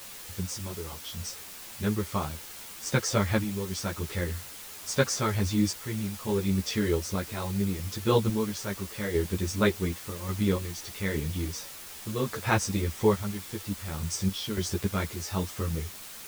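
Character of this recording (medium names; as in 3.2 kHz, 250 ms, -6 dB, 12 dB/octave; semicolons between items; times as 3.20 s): random-step tremolo, depth 70%; a quantiser's noise floor 8-bit, dither triangular; a shimmering, thickened sound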